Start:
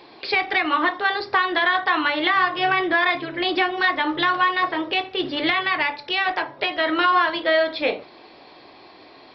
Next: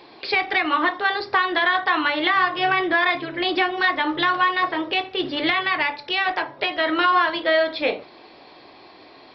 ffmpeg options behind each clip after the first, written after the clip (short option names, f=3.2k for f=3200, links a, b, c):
-af anull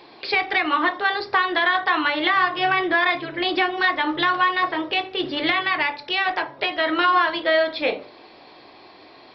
-af "bandreject=f=54.21:t=h:w=4,bandreject=f=108.42:t=h:w=4,bandreject=f=162.63:t=h:w=4,bandreject=f=216.84:t=h:w=4,bandreject=f=271.05:t=h:w=4,bandreject=f=325.26:t=h:w=4,bandreject=f=379.47:t=h:w=4,bandreject=f=433.68:t=h:w=4,bandreject=f=487.89:t=h:w=4,bandreject=f=542.1:t=h:w=4,bandreject=f=596.31:t=h:w=4"